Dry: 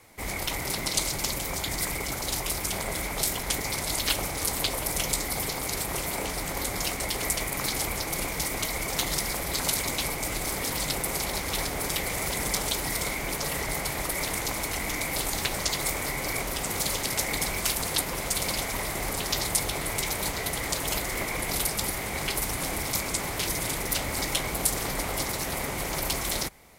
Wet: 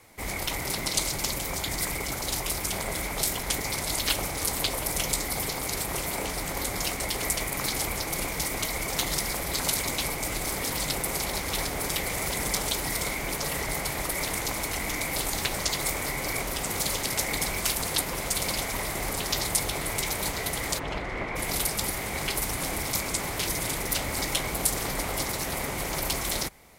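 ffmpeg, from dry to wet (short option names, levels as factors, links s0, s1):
-filter_complex "[0:a]asplit=3[s0][s1][s2];[s0]afade=t=out:st=20.78:d=0.02[s3];[s1]lowpass=2400,afade=t=in:st=20.78:d=0.02,afade=t=out:st=21.35:d=0.02[s4];[s2]afade=t=in:st=21.35:d=0.02[s5];[s3][s4][s5]amix=inputs=3:normalize=0"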